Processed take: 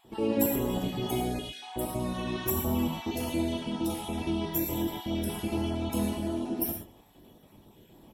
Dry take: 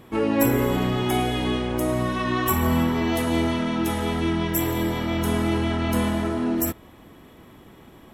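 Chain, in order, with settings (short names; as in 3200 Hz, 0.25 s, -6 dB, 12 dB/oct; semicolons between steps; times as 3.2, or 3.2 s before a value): random spectral dropouts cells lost 35%; band shelf 1500 Hz -9 dB 1.2 oct; vibrato 1.3 Hz 7.9 cents; high shelf 11000 Hz +6.5 dB; speakerphone echo 0.24 s, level -24 dB; non-linear reverb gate 0.15 s flat, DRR 1.5 dB; gain -7.5 dB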